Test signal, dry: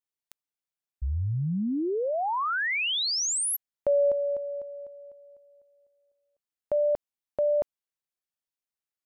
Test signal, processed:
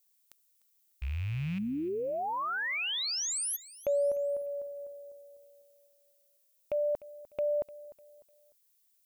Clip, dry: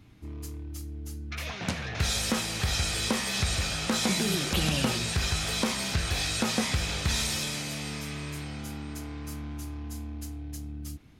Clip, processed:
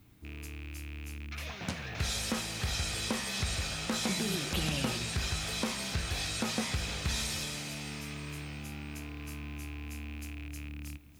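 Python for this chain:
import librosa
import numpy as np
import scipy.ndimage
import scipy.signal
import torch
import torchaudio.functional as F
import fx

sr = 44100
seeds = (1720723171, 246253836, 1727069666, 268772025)

y = fx.rattle_buzz(x, sr, strikes_db=-37.0, level_db=-30.0)
y = fx.dmg_noise_colour(y, sr, seeds[0], colour='violet', level_db=-65.0)
y = fx.echo_feedback(y, sr, ms=300, feedback_pct=35, wet_db=-18.5)
y = y * 10.0 ** (-5.5 / 20.0)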